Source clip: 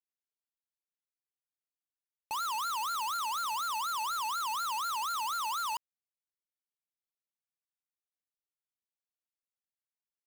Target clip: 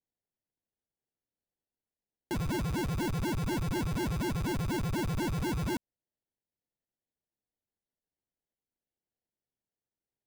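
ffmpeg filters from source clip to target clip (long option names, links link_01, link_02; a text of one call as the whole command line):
ffmpeg -i in.wav -af "aemphasis=mode=reproduction:type=50kf,acrusher=samples=36:mix=1:aa=0.000001,volume=3.5dB" out.wav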